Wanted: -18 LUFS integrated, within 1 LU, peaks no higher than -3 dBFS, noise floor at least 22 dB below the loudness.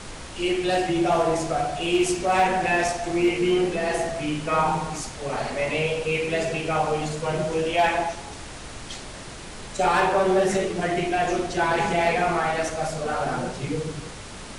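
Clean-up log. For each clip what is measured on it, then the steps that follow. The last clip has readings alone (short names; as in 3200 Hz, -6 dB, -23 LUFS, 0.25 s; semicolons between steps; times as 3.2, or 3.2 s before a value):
clipped 0.2%; flat tops at -13.5 dBFS; noise floor -39 dBFS; noise floor target -46 dBFS; loudness -24.0 LUFS; peak -13.5 dBFS; loudness target -18.0 LUFS
-> clip repair -13.5 dBFS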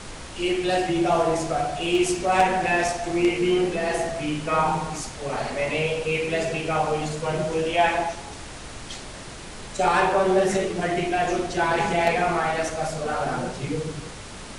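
clipped 0.0%; noise floor -39 dBFS; noise floor target -46 dBFS
-> noise print and reduce 7 dB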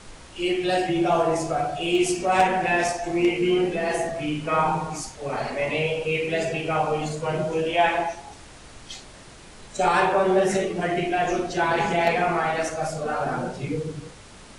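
noise floor -45 dBFS; noise floor target -46 dBFS
-> noise print and reduce 6 dB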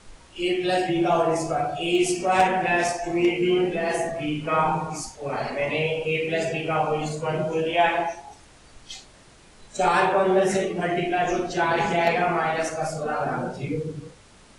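noise floor -51 dBFS; loudness -24.0 LUFS; peak -6.0 dBFS; loudness target -18.0 LUFS
-> gain +6 dB; limiter -3 dBFS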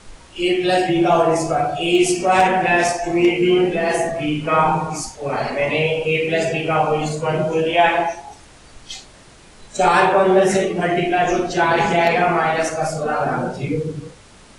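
loudness -18.0 LUFS; peak -3.0 dBFS; noise floor -45 dBFS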